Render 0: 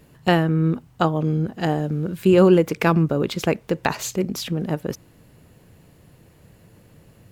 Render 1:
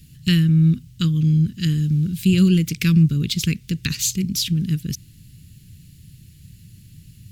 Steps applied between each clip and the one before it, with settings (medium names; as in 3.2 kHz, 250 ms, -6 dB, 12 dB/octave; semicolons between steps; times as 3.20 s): Chebyshev band-stop 140–3700 Hz, order 2; trim +8.5 dB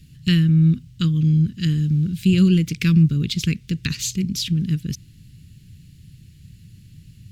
treble shelf 8.2 kHz -11.5 dB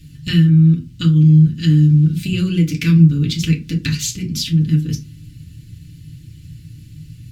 in parallel at +2 dB: compression, threshold -26 dBFS, peak gain reduction 14 dB; on the sum: FDN reverb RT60 0.3 s, low-frequency decay 1.25×, high-frequency decay 0.65×, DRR -1.5 dB; trim -4.5 dB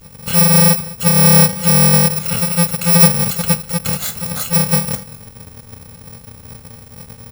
bit-reversed sample order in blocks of 128 samples; delay 204 ms -19 dB